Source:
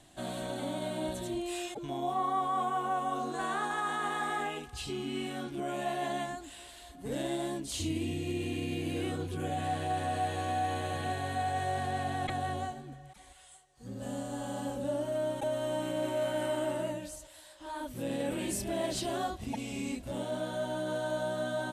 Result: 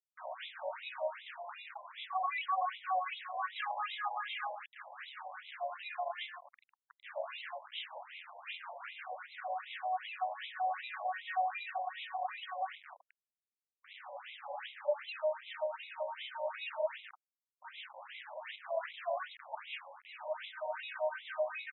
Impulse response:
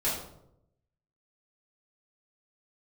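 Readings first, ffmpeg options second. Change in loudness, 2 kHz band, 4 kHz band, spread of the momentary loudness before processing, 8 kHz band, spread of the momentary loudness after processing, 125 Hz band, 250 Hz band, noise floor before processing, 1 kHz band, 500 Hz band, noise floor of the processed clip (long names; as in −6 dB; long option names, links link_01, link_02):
−5.5 dB, −2.0 dB, −4.0 dB, 8 LU, below −35 dB, 12 LU, below −40 dB, below −40 dB, −54 dBFS, −4.0 dB, −5.5 dB, below −85 dBFS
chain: -filter_complex "[0:a]aresample=8000,acrusher=bits=6:mix=0:aa=0.000001,aresample=44100,acrossover=split=1000[link_01][link_02];[link_01]aeval=exprs='val(0)*(1-0.7/2+0.7/2*cos(2*PI*5.7*n/s))':channel_layout=same[link_03];[link_02]aeval=exprs='val(0)*(1-0.7/2-0.7/2*cos(2*PI*5.7*n/s))':channel_layout=same[link_04];[link_03][link_04]amix=inputs=2:normalize=0,acrusher=samples=8:mix=1:aa=0.000001:lfo=1:lforange=12.8:lforate=1.4,afftfilt=real='re*between(b*sr/1024,720*pow(2900/720,0.5+0.5*sin(2*PI*2.6*pts/sr))/1.41,720*pow(2900/720,0.5+0.5*sin(2*PI*2.6*pts/sr))*1.41)':imag='im*between(b*sr/1024,720*pow(2900/720,0.5+0.5*sin(2*PI*2.6*pts/sr))/1.41,720*pow(2900/720,0.5+0.5*sin(2*PI*2.6*pts/sr))*1.41)':win_size=1024:overlap=0.75,volume=4.5dB"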